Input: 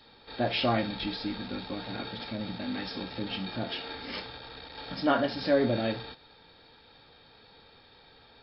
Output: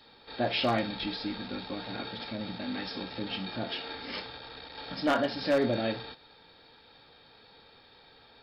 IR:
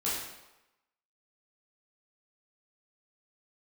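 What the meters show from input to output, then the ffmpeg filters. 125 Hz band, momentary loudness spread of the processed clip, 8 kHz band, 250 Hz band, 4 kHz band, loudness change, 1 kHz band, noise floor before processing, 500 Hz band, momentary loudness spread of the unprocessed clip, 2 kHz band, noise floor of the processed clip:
−3.0 dB, 15 LU, can't be measured, −1.5 dB, 0.0 dB, −1.0 dB, −0.5 dB, −57 dBFS, −1.0 dB, 16 LU, 0.0 dB, −58 dBFS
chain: -af "aeval=exprs='0.133*(abs(mod(val(0)/0.133+3,4)-2)-1)':channel_layout=same,lowshelf=frequency=150:gain=-5"

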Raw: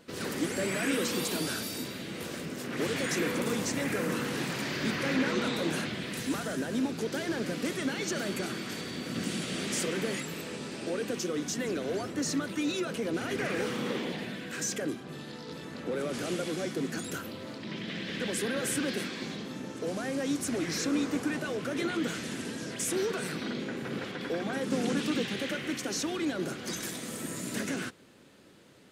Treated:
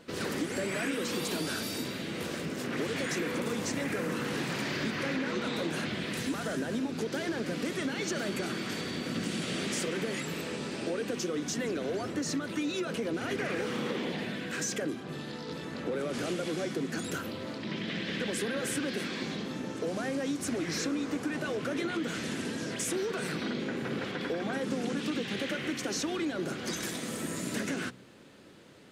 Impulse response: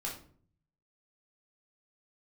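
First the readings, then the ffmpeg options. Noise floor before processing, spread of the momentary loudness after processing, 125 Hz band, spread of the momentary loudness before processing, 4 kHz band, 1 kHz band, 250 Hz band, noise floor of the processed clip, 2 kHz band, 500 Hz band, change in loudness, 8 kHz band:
−43 dBFS, 4 LU, 0.0 dB, 8 LU, −0.5 dB, 0.0 dB, −1.0 dB, −40 dBFS, −0.5 dB, −0.5 dB, −1.0 dB, −2.0 dB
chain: -af "highshelf=frequency=8100:gain=-6.5,bandreject=frequency=63.45:width_type=h:width=4,bandreject=frequency=126.9:width_type=h:width=4,bandreject=frequency=190.35:width_type=h:width=4,bandreject=frequency=253.8:width_type=h:width=4,acompressor=threshold=-32dB:ratio=6,volume=3dB"

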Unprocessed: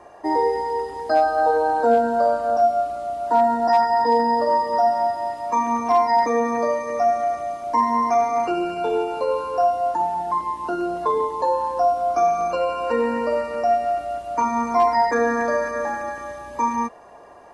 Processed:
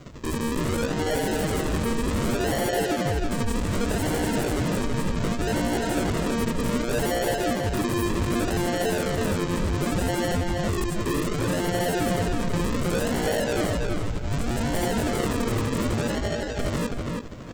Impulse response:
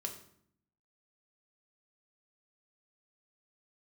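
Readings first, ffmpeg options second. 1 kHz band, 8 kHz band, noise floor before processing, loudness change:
−13.5 dB, can't be measured, −40 dBFS, −5.0 dB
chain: -filter_complex "[0:a]alimiter=limit=-16.5dB:level=0:latency=1:release=220,acontrast=41,tremolo=f=12:d=0.52,aresample=16000,acrusher=samples=18:mix=1:aa=0.000001:lfo=1:lforange=10.8:lforate=0.66,aresample=44100,aeval=exprs='0.0841*(abs(mod(val(0)/0.0841+3,4)-2)-1)':channel_layout=same,asplit=2[link_01][link_02];[link_02]adelay=326,lowpass=frequency=4400:poles=1,volume=-3dB,asplit=2[link_03][link_04];[link_04]adelay=326,lowpass=frequency=4400:poles=1,volume=0.25,asplit=2[link_05][link_06];[link_06]adelay=326,lowpass=frequency=4400:poles=1,volume=0.25,asplit=2[link_07][link_08];[link_08]adelay=326,lowpass=frequency=4400:poles=1,volume=0.25[link_09];[link_03][link_05][link_07][link_09]amix=inputs=4:normalize=0[link_10];[link_01][link_10]amix=inputs=2:normalize=0,acrusher=bits=10:mix=0:aa=0.000001"

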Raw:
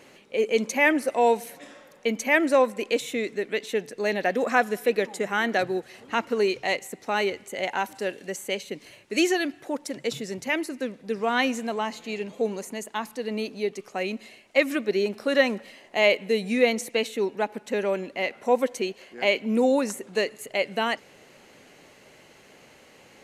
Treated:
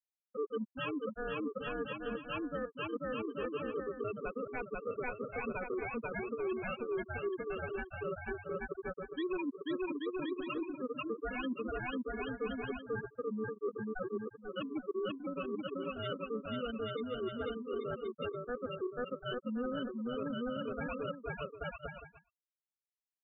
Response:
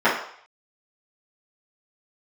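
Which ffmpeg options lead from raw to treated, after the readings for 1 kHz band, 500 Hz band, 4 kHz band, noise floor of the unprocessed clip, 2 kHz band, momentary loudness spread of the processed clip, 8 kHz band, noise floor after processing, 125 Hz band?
−14.5 dB, −13.0 dB, −16.0 dB, −54 dBFS, −16.0 dB, 3 LU, below −40 dB, below −85 dBFS, −4.0 dB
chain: -filter_complex "[0:a]afftfilt=real='re*gte(hypot(re,im),0.316)':imag='im*gte(hypot(re,im),0.316)':win_size=1024:overlap=0.75,highpass=160,aecho=1:1:490|833|1073|1241|1359:0.631|0.398|0.251|0.158|0.1,acrossover=split=540[link_01][link_02];[link_01]crystalizer=i=6:c=0[link_03];[link_02]aeval=exprs='val(0)*sin(2*PI*740*n/s)':channel_layout=same[link_04];[link_03][link_04]amix=inputs=2:normalize=0,agate=range=-33dB:threshold=-41dB:ratio=3:detection=peak,areverse,acompressor=threshold=-33dB:ratio=8,areverse,alimiter=level_in=4.5dB:limit=-24dB:level=0:latency=1:release=298,volume=-4.5dB,volume=1dB"

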